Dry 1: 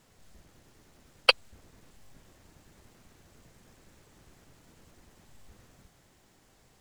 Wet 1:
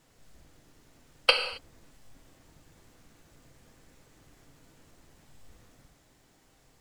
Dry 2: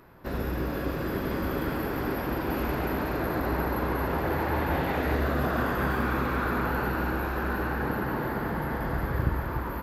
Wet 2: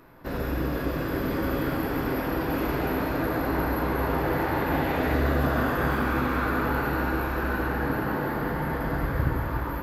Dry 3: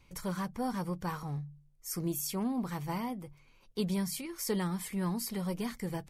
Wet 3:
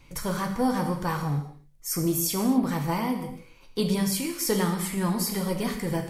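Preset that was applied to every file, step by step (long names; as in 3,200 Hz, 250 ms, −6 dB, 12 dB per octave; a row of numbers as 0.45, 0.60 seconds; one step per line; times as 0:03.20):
reverb whose tail is shaped and stops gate 290 ms falling, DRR 3.5 dB
loudness normalisation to −27 LKFS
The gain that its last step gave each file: −2.0, +0.5, +7.5 decibels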